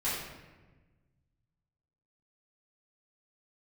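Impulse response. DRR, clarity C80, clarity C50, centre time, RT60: -12.0 dB, 3.0 dB, 0.5 dB, 72 ms, 1.3 s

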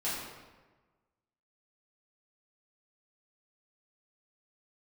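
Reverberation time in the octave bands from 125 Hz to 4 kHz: 1.5 s, 1.3 s, 1.3 s, 1.2 s, 1.1 s, 0.90 s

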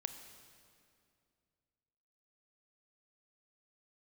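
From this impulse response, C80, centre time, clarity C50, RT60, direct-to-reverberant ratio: 9.5 dB, 26 ms, 8.5 dB, 2.4 s, 8.0 dB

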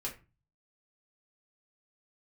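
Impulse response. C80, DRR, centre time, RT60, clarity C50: 17.5 dB, -3.5 dB, 17 ms, 0.30 s, 11.5 dB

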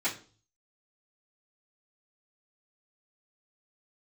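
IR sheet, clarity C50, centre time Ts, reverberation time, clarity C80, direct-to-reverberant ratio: 11.5 dB, 18 ms, 0.40 s, 17.0 dB, -14.0 dB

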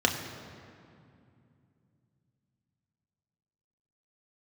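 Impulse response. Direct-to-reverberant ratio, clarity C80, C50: 1.5 dB, 7.5 dB, 7.0 dB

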